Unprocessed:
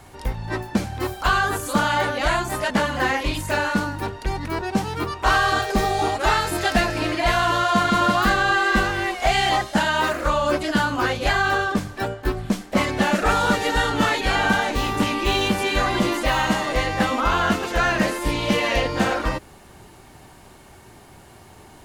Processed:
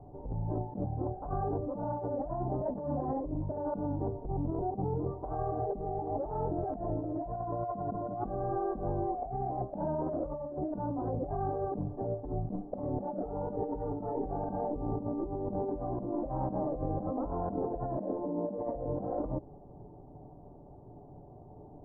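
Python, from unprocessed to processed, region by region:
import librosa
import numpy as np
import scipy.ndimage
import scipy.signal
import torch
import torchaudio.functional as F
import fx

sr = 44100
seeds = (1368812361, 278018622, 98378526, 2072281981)

y = fx.chain(x, sr, fx.lowpass(hz=1400.0, slope=12),
    fx.over_compress(threshold_db=-25.0, ratio=-0.5), at=(4.14, 5.07))
y = fx.chain(y, sr, fx.cheby1_highpass(hz=160.0, order=6),
    fx.resample_linear(factor=6), at=(17.97, 18.58))
y = scipy.signal.sosfilt(scipy.signal.butter(6, 780.0, 'lowpass', fs=sr, output='sos'), y)
y = y + 0.4 * np.pad(y, (int(6.9 * sr / 1000.0), 0))[:len(y)]
y = fx.over_compress(y, sr, threshold_db=-28.0, ratio=-1.0)
y = F.gain(torch.from_numpy(y), -6.5).numpy()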